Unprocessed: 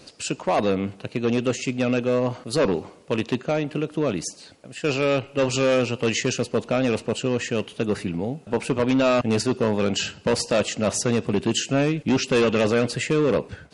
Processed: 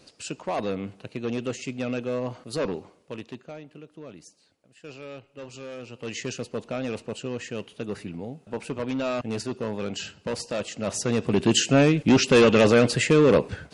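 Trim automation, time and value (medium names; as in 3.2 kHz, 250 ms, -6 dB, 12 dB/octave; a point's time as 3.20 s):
2.64 s -7 dB
3.72 s -19 dB
5.77 s -19 dB
6.22 s -8.5 dB
10.69 s -8.5 dB
11.54 s +3 dB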